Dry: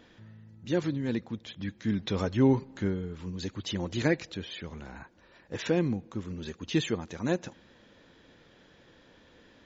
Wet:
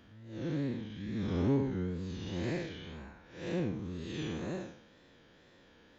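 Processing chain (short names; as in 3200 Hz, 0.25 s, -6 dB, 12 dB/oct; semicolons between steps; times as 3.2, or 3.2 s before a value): time blur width 0.343 s; time stretch by phase-locked vocoder 0.62×; wow and flutter 80 cents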